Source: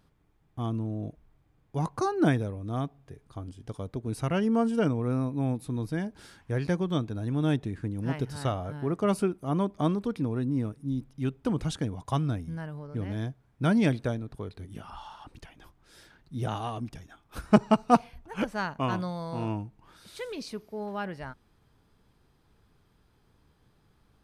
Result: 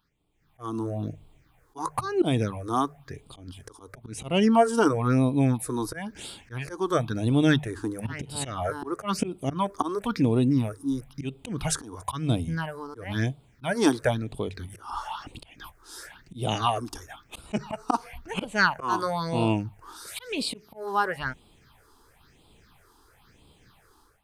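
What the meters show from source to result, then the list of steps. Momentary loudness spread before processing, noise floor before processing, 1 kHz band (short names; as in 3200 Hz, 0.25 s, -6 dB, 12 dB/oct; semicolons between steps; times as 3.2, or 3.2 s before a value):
17 LU, -67 dBFS, +4.5 dB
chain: auto swell 0.216 s; low shelf 430 Hz -11.5 dB; notches 50/100/150 Hz; AGC gain up to 16 dB; phaser stages 6, 0.99 Hz, lowest notch 150–1700 Hz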